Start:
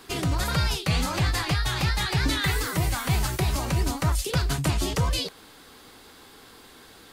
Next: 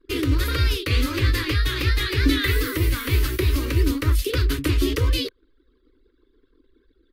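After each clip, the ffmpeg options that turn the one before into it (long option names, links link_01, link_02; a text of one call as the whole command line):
ffmpeg -i in.wav -af "anlmdn=0.251,firequalizer=gain_entry='entry(100,0);entry(170,-27);entry(270,4);entry(490,-1);entry(730,-27);entry(1100,-8);entry(1900,-2);entry(3500,-3);entry(7400,-13);entry(13000,-1)':delay=0.05:min_phase=1,volume=6dB" out.wav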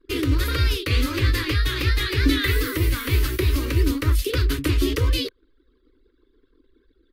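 ffmpeg -i in.wav -af anull out.wav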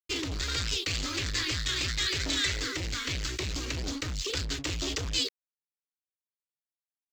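ffmpeg -i in.wav -af "aresample=16000,asoftclip=type=hard:threshold=-22.5dB,aresample=44100,crystalizer=i=5.5:c=0,aeval=exprs='sgn(val(0))*max(abs(val(0))-0.00944,0)':channel_layout=same,volume=-8.5dB" out.wav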